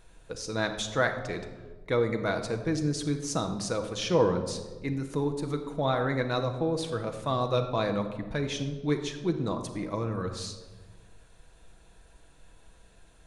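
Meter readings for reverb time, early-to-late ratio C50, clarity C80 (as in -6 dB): 1.3 s, 9.0 dB, 10.5 dB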